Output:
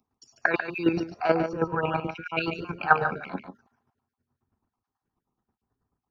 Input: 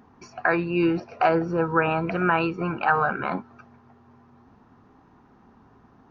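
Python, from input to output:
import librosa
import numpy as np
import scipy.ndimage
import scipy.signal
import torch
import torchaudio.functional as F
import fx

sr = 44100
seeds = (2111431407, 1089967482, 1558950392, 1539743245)

y = fx.spec_dropout(x, sr, seeds[0], share_pct=33)
y = fx.bass_treble(y, sr, bass_db=-1, treble_db=12)
y = fx.chopper(y, sr, hz=9.3, depth_pct=60, duty_pct=25)
y = y + 10.0 ** (-7.0 / 20.0) * np.pad(y, (int(144 * sr / 1000.0), 0))[:len(y)]
y = fx.band_widen(y, sr, depth_pct=70)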